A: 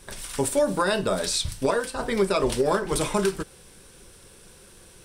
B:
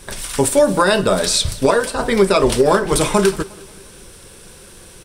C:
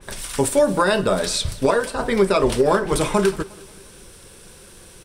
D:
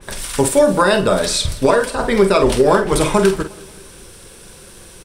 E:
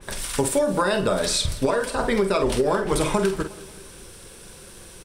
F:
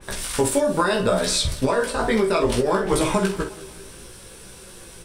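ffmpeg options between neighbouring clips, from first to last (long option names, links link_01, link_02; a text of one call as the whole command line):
ffmpeg -i in.wav -af "aecho=1:1:179|358|537|716:0.0794|0.0413|0.0215|0.0112,volume=9dB" out.wav
ffmpeg -i in.wav -af "adynamicequalizer=threshold=0.0251:dfrequency=3200:dqfactor=0.7:tfrequency=3200:tqfactor=0.7:attack=5:release=100:ratio=0.375:range=2:mode=cutabove:tftype=highshelf,volume=-3.5dB" out.wav
ffmpeg -i in.wav -filter_complex "[0:a]asplit=2[link_01][link_02];[link_02]adelay=47,volume=-9dB[link_03];[link_01][link_03]amix=inputs=2:normalize=0,volume=4dB" out.wav
ffmpeg -i in.wav -af "acompressor=threshold=-14dB:ratio=6,volume=-3.5dB" out.wav
ffmpeg -i in.wav -af "flanger=delay=15.5:depth=2.7:speed=0.68,volume=4.5dB" out.wav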